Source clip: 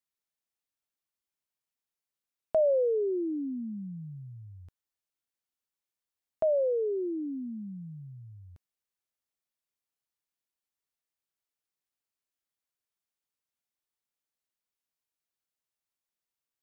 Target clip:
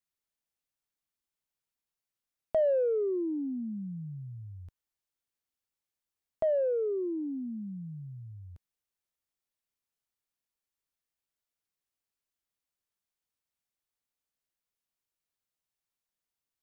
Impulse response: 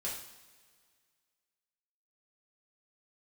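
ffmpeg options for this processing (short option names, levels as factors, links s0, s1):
-filter_complex "[0:a]asplit=2[s0][s1];[s1]asoftclip=type=tanh:threshold=0.0422,volume=0.282[s2];[s0][s2]amix=inputs=2:normalize=0,lowshelf=f=120:g=6.5,volume=0.708"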